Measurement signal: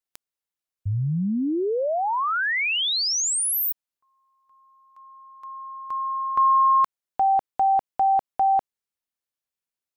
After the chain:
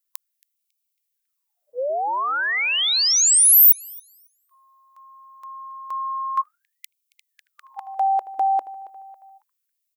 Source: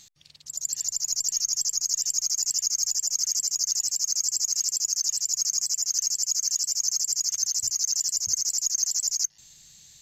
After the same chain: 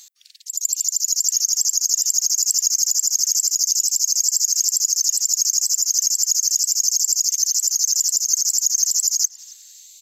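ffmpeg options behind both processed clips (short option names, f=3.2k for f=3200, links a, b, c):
-filter_complex "[0:a]aemphasis=mode=production:type=50kf,asplit=2[a][b];[b]adelay=275,lowpass=f=3.7k:p=1,volume=-17dB,asplit=2[c][d];[d]adelay=275,lowpass=f=3.7k:p=1,volume=0.51,asplit=2[e][f];[f]adelay=275,lowpass=f=3.7k:p=1,volume=0.51,asplit=2[g][h];[h]adelay=275,lowpass=f=3.7k:p=1,volume=0.51[i];[a][c][e][g][i]amix=inputs=5:normalize=0,afftfilt=real='re*gte(b*sr/1024,260*pow(2200/260,0.5+0.5*sin(2*PI*0.32*pts/sr)))':imag='im*gte(b*sr/1024,260*pow(2200/260,0.5+0.5*sin(2*PI*0.32*pts/sr)))':win_size=1024:overlap=0.75"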